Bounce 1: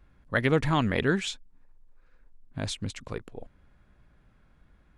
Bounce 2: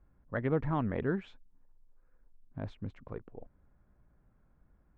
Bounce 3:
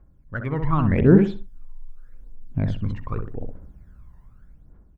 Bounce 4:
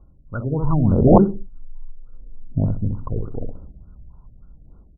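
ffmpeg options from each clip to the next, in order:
-af "lowpass=1.2k,volume=-6dB"
-filter_complex "[0:a]dynaudnorm=f=210:g=7:m=10dB,aphaser=in_gain=1:out_gain=1:delay=1.1:decay=0.73:speed=0.84:type=triangular,asplit=2[a][b];[b]adelay=64,lowpass=f=960:p=1,volume=-4dB,asplit=2[c][d];[d]adelay=64,lowpass=f=960:p=1,volume=0.31,asplit=2[e][f];[f]adelay=64,lowpass=f=960:p=1,volume=0.31,asplit=2[g][h];[h]adelay=64,lowpass=f=960:p=1,volume=0.31[i];[c][e][g][i]amix=inputs=4:normalize=0[j];[a][j]amix=inputs=2:normalize=0"
-af "asuperstop=centerf=2100:order=20:qfactor=1.3,aeval=exprs='(mod(1.88*val(0)+1,2)-1)/1.88':c=same,afftfilt=real='re*lt(b*sr/1024,680*pow(1900/680,0.5+0.5*sin(2*PI*3.4*pts/sr)))':imag='im*lt(b*sr/1024,680*pow(1900/680,0.5+0.5*sin(2*PI*3.4*pts/sr)))':win_size=1024:overlap=0.75,volume=3.5dB"

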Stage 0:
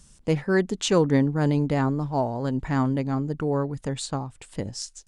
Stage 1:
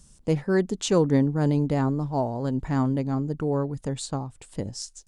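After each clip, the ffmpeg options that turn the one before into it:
-af "equalizer=f=2.1k:t=o:w=2:g=-5.5"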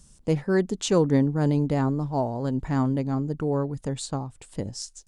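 -af anull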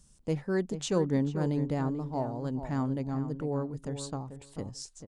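-filter_complex "[0:a]asplit=2[a][b];[b]adelay=439,lowpass=f=1.9k:p=1,volume=-10dB,asplit=2[c][d];[d]adelay=439,lowpass=f=1.9k:p=1,volume=0.15[e];[a][c][e]amix=inputs=3:normalize=0,volume=-7dB"

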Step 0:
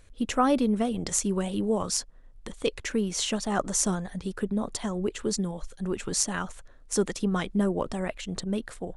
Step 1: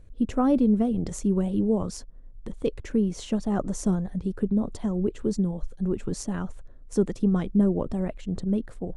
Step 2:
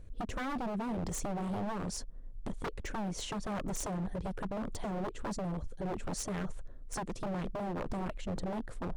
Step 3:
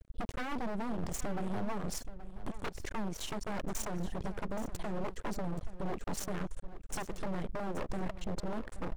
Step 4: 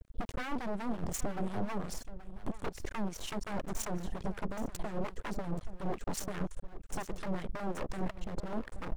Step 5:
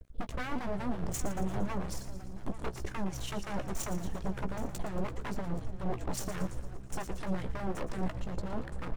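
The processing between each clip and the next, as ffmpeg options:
-af "tiltshelf=f=710:g=9.5,volume=-3dB"
-af "acompressor=threshold=-27dB:ratio=5,aeval=exprs='0.0299*(abs(mod(val(0)/0.0299+3,4)-2)-1)':c=same"
-af "aeval=exprs='max(val(0),0)':c=same,aecho=1:1:826:0.188,volume=3dB"
-filter_complex "[0:a]acrossover=split=1100[a][b];[a]aeval=exprs='val(0)*(1-0.7/2+0.7/2*cos(2*PI*5.6*n/s))':c=same[c];[b]aeval=exprs='val(0)*(1-0.7/2-0.7/2*cos(2*PI*5.6*n/s))':c=same[d];[c][d]amix=inputs=2:normalize=0,volume=3.5dB"
-filter_complex "[0:a]asplit=2[a][b];[b]adelay=16,volume=-10dB[c];[a][c]amix=inputs=2:normalize=0,asplit=2[d][e];[e]asplit=6[f][g][h][i][j][k];[f]adelay=115,afreqshift=-66,volume=-12dB[l];[g]adelay=230,afreqshift=-132,volume=-16.9dB[m];[h]adelay=345,afreqshift=-198,volume=-21.8dB[n];[i]adelay=460,afreqshift=-264,volume=-26.6dB[o];[j]adelay=575,afreqshift=-330,volume=-31.5dB[p];[k]adelay=690,afreqshift=-396,volume=-36.4dB[q];[l][m][n][o][p][q]amix=inputs=6:normalize=0[r];[d][r]amix=inputs=2:normalize=0"

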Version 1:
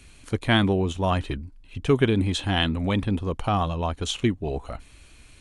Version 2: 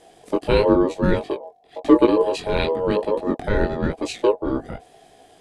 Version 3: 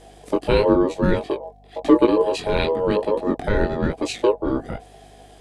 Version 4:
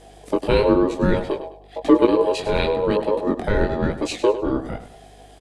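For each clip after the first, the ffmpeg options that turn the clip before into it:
-af "flanger=delay=16:depth=6.8:speed=0.98,aeval=exprs='val(0)*sin(2*PI*730*n/s)':c=same,lowshelf=f=580:t=q:w=1.5:g=11,volume=3dB"
-filter_complex "[0:a]asplit=2[a][b];[b]acompressor=threshold=-24dB:ratio=6,volume=-2.5dB[c];[a][c]amix=inputs=2:normalize=0,aeval=exprs='val(0)+0.00398*(sin(2*PI*50*n/s)+sin(2*PI*2*50*n/s)/2+sin(2*PI*3*50*n/s)/3+sin(2*PI*4*50*n/s)/4+sin(2*PI*5*50*n/s)/5)':c=same,volume=-2dB"
-af "aecho=1:1:102|204|306:0.237|0.0783|0.0258"

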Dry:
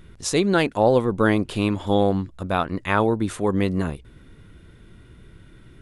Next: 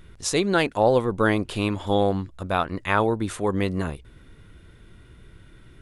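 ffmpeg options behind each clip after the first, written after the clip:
-af "equalizer=f=210:t=o:w=1.9:g=-4"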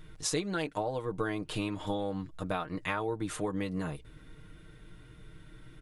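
-af "acompressor=threshold=-26dB:ratio=10,aecho=1:1:6.5:0.65,volume=-4dB"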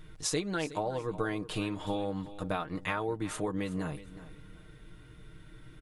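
-af "aecho=1:1:368|736:0.168|0.0403"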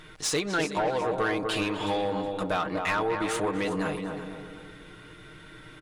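-filter_complex "[0:a]asplit=2[a][b];[b]adelay=246,lowpass=f=1k:p=1,volume=-5dB,asplit=2[c][d];[d]adelay=246,lowpass=f=1k:p=1,volume=0.51,asplit=2[e][f];[f]adelay=246,lowpass=f=1k:p=1,volume=0.51,asplit=2[g][h];[h]adelay=246,lowpass=f=1k:p=1,volume=0.51,asplit=2[i][j];[j]adelay=246,lowpass=f=1k:p=1,volume=0.51,asplit=2[k][l];[l]adelay=246,lowpass=f=1k:p=1,volume=0.51[m];[a][c][e][g][i][k][m]amix=inputs=7:normalize=0,asplit=2[n][o];[o]highpass=f=720:p=1,volume=18dB,asoftclip=type=tanh:threshold=-17dB[p];[n][p]amix=inputs=2:normalize=0,lowpass=f=5.1k:p=1,volume=-6dB"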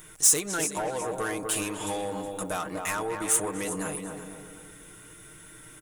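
-af "aexciter=amount=5.9:drive=9.2:freq=6.4k,volume=-4dB"

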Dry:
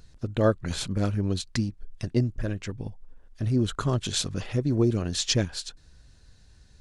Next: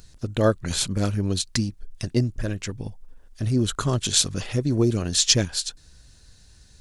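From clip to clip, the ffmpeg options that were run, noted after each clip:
-af "highshelf=f=4.5k:g=11,volume=2dB"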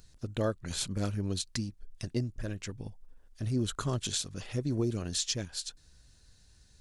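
-af "alimiter=limit=-11.5dB:level=0:latency=1:release=439,volume=-8.5dB"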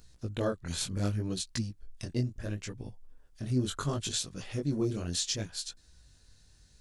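-af "flanger=delay=16:depth=7.9:speed=0.7,volume=3dB"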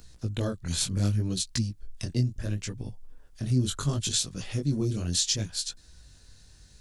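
-filter_complex "[0:a]acrossover=split=230|3000[a][b][c];[b]acompressor=threshold=-57dB:ratio=1.5[d];[a][d][c]amix=inputs=3:normalize=0,volume=6.5dB"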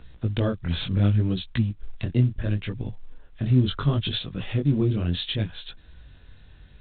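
-af "volume=5.5dB" -ar 8000 -c:a pcm_mulaw

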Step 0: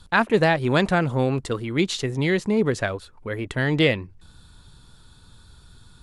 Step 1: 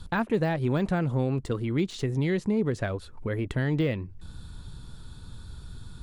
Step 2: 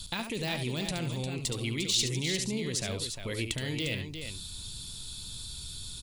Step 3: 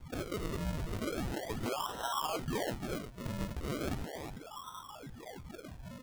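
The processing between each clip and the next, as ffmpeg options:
-af "deesser=0.7,lowshelf=f=420:g=8.5,acompressor=threshold=-31dB:ratio=2"
-af "alimiter=limit=-21.5dB:level=0:latency=1,aexciter=amount=5.3:drive=8.5:freq=2.3k,aecho=1:1:71|352:0.398|0.398,volume=-5.5dB"
-af "asuperstop=centerf=1900:order=8:qfactor=2.9,lowpass=f=2.9k:t=q:w=0.5098,lowpass=f=2.9k:t=q:w=0.6013,lowpass=f=2.9k:t=q:w=0.9,lowpass=f=2.9k:t=q:w=2.563,afreqshift=-3400,acrusher=samples=38:mix=1:aa=0.000001:lfo=1:lforange=38:lforate=0.37,volume=-2.5dB"

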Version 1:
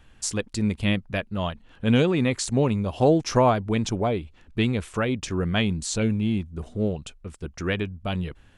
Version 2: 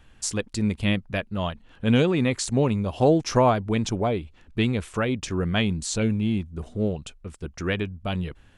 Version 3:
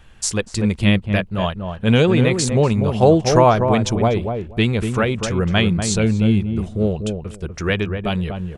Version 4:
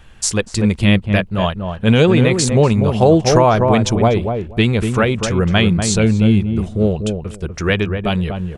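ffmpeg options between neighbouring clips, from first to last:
-af anull
-filter_complex "[0:a]equalizer=f=270:w=6.4:g=-10.5,asplit=2[a][b];[b]adelay=243,lowpass=f=930:p=1,volume=-5dB,asplit=2[c][d];[d]adelay=243,lowpass=f=930:p=1,volume=0.17,asplit=2[e][f];[f]adelay=243,lowpass=f=930:p=1,volume=0.17[g];[a][c][e][g]amix=inputs=4:normalize=0,volume=6.5dB"
-af "alimiter=level_in=4.5dB:limit=-1dB:release=50:level=0:latency=1,volume=-1dB"

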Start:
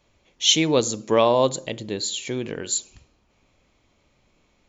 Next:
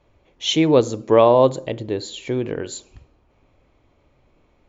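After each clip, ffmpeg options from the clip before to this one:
-af "lowpass=f=1k:p=1,equalizer=f=200:t=o:w=0.35:g=-9,volume=6.5dB"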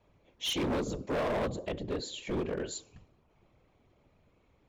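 -filter_complex "[0:a]afftfilt=real='hypot(re,im)*cos(2*PI*random(0))':imag='hypot(re,im)*sin(2*PI*random(1))':win_size=512:overlap=0.75,acrossover=split=310[a][b];[b]acompressor=threshold=-25dB:ratio=3[c];[a][c]amix=inputs=2:normalize=0,asoftclip=type=hard:threshold=-27.5dB,volume=-1dB"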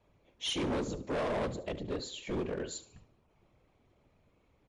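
-af "aecho=1:1:73|146|219:0.141|0.0537|0.0204,volume=-1.5dB" -ar 24000 -c:a libmp3lame -b:a 64k

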